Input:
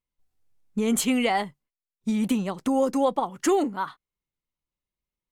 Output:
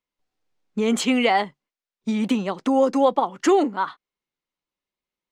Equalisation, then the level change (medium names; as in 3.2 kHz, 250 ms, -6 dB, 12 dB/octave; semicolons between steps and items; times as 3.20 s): three-band isolator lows -15 dB, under 200 Hz, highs -19 dB, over 6.5 kHz; +5.0 dB